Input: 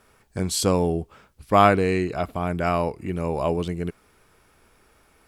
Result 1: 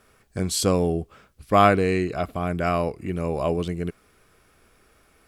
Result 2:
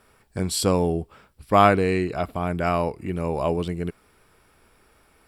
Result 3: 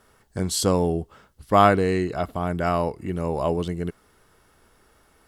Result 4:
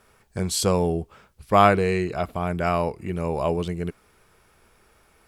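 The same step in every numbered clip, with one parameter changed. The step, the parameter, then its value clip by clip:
notch, frequency: 900, 6400, 2400, 280 Hz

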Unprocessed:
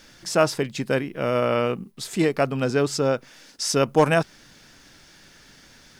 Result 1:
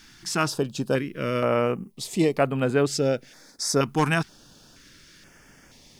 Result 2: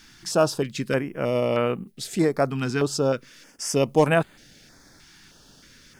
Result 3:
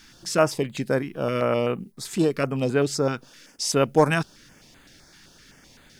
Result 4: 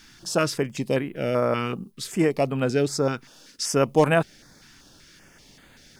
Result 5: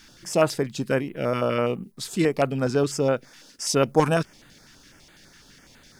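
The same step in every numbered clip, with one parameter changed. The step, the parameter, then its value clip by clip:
stepped notch, rate: 2.1, 3.2, 7.8, 5.2, 12 Hz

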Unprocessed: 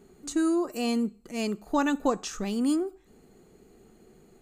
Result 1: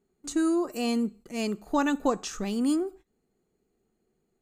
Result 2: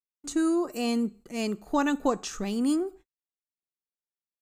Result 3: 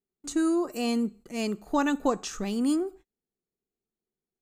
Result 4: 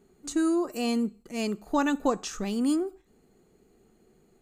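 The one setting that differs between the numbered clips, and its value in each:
gate, range: -19, -60, -37, -6 dB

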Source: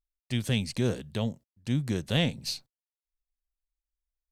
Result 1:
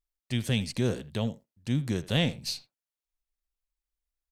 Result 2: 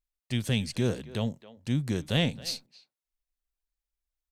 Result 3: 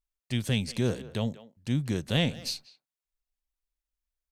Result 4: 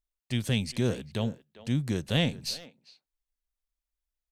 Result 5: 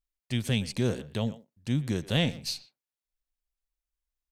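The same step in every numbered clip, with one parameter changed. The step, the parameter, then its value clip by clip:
speakerphone echo, time: 80, 270, 190, 400, 120 ms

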